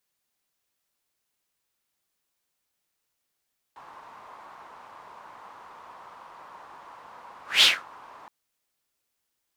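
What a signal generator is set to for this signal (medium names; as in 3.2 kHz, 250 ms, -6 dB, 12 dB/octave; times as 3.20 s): whoosh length 4.52 s, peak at 3.87 s, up 0.19 s, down 0.23 s, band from 1 kHz, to 3.5 kHz, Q 3.9, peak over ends 31.5 dB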